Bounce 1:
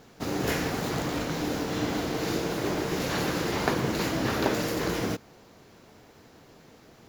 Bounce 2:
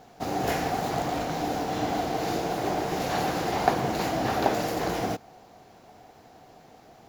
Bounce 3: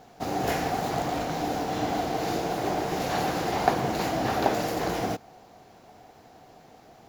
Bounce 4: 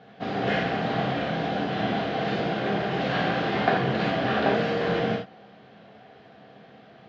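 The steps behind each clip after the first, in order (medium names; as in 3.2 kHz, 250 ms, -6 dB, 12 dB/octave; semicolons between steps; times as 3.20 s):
peaking EQ 740 Hz +14 dB 0.41 oct; trim -2 dB
no audible change
cabinet simulation 120–3700 Hz, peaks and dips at 200 Hz +7 dB, 320 Hz -6 dB, 900 Hz -9 dB, 1.6 kHz +4 dB, 3.2 kHz +4 dB; gated-style reverb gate 100 ms flat, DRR -1 dB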